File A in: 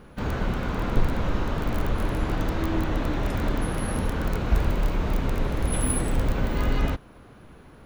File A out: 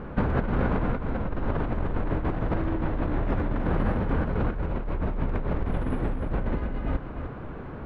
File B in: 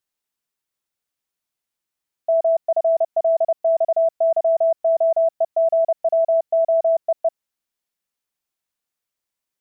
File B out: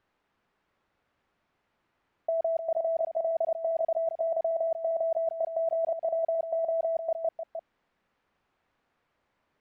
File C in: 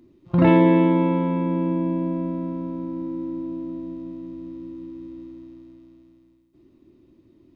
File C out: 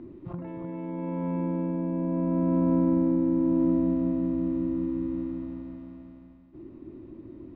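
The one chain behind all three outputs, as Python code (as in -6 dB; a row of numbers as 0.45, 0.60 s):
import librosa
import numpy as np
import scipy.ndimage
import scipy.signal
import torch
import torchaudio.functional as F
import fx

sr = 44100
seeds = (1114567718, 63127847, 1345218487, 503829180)

y = scipy.signal.sosfilt(scipy.signal.butter(2, 1700.0, 'lowpass', fs=sr, output='sos'), x)
y = fx.dynamic_eq(y, sr, hz=1200.0, q=2.1, threshold_db=-38.0, ratio=4.0, max_db=-4)
y = fx.over_compress(y, sr, threshold_db=-31.0, ratio=-1.0)
y = y + 10.0 ** (-8.5 / 20.0) * np.pad(y, (int(305 * sr / 1000.0), 0))[:len(y)]
y = F.gain(torch.from_numpy(y), 4.0).numpy()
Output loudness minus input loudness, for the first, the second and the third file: -2.0, -10.0, -5.0 LU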